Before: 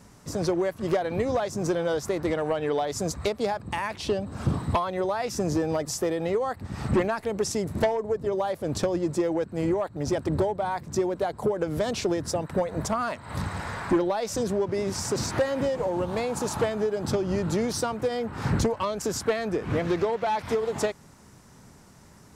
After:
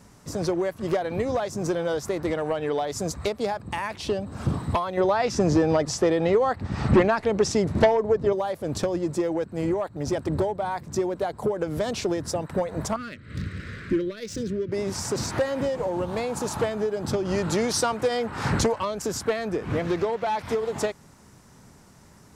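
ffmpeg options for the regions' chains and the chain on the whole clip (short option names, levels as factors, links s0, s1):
-filter_complex "[0:a]asettb=1/sr,asplit=3[s0][s1][s2];[s0]atrim=end=4.974[s3];[s1]atrim=start=4.97:end=8.33,asetpts=PTS-STARTPTS,afade=t=in:d=0.004:c=qsin,afade=t=out:st=3.356:d=0.004:c=qsin,lowpass=5700,acontrast=39[s4];[s2]atrim=start=8.326[s5];[s3][s4]acrossfade=d=0.004:c1=hsin:c2=qsin[s6];[s6][s5]acrossfade=d=0.004:c1=qsin:c2=hsin,asettb=1/sr,asplit=3[s7][s8][s9];[s7]atrim=end=12.964[s10];[s8]atrim=start=12.96:end=14.72,asetpts=PTS-STARTPTS,afade=t=in:d=0.004:c=qsin,afade=t=out:st=1.756:d=0.004:c=qsin,asuperstop=centerf=830:order=4:qfactor=0.68,adynamicsmooth=sensitivity=8:basefreq=3100[s11];[s9]atrim=start=14.716[s12];[s10][s11]acrossfade=d=0.004:c1=hsin:c2=qsin[s13];[s13][s12]acrossfade=d=0.004:c1=qsin:c2=hsin,asettb=1/sr,asplit=3[s14][s15][s16];[s14]atrim=end=17.254[s17];[s15]atrim=start=17.25:end=18.8,asetpts=PTS-STARTPTS,afade=t=in:d=0.004:c=qsin,afade=t=out:st=1.546:d=0.004:c=qsin,lowpass=12000,lowshelf=f=440:g=-7.5,acontrast=59[s18];[s16]atrim=start=18.796[s19];[s17][s18]acrossfade=d=0.004:c1=hsin:c2=qsin[s20];[s20][s19]acrossfade=d=0.004:c1=qsin:c2=hsin"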